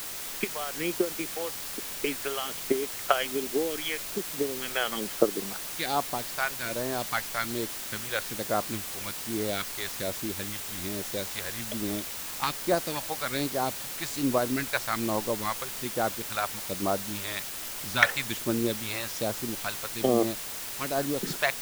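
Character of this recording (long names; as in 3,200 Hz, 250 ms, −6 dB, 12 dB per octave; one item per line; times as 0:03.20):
phaser sweep stages 2, 1.2 Hz, lowest notch 240–2,600 Hz
a quantiser's noise floor 6 bits, dither triangular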